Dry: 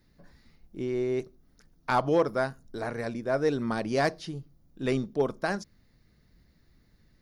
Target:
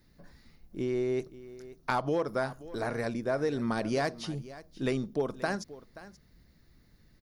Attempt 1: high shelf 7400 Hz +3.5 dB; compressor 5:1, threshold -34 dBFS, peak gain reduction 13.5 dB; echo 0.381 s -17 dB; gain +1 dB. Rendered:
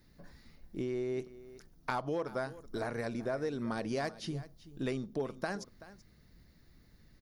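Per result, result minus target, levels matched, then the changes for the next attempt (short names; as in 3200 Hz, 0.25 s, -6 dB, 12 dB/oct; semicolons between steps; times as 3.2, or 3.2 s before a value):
echo 0.149 s early; compressor: peak gain reduction +5.5 dB
change: echo 0.53 s -17 dB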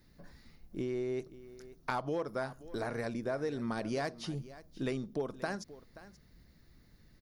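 compressor: peak gain reduction +5.5 dB
change: compressor 5:1, threshold -27 dBFS, peak gain reduction 8 dB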